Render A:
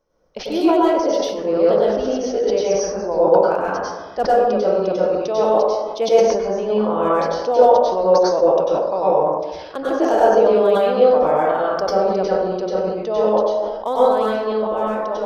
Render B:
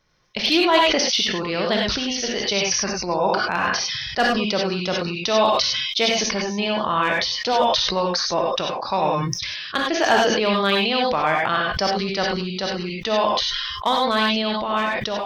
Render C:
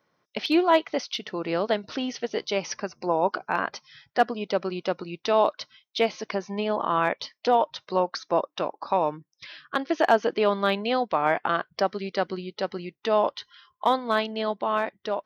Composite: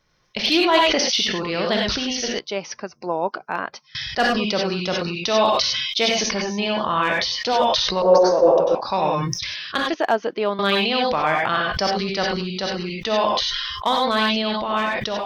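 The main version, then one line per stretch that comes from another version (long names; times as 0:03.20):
B
0:02.39–0:03.95: punch in from C
0:08.02–0:08.75: punch in from A
0:09.94–0:10.59: punch in from C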